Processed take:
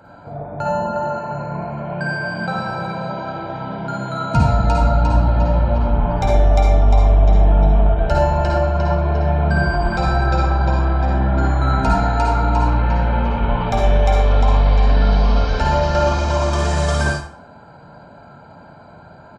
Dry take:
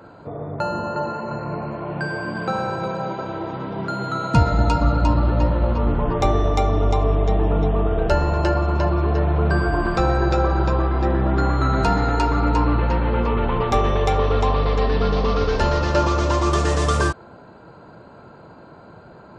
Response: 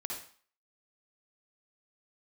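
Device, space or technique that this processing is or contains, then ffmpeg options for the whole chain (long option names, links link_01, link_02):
microphone above a desk: -filter_complex "[0:a]aecho=1:1:1.3:0.56[link_01];[1:a]atrim=start_sample=2205[link_02];[link_01][link_02]afir=irnorm=-1:irlink=0"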